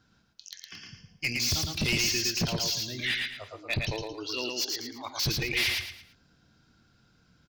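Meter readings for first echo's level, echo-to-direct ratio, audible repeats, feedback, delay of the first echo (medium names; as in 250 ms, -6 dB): -3.0 dB, -2.5 dB, 4, 32%, 112 ms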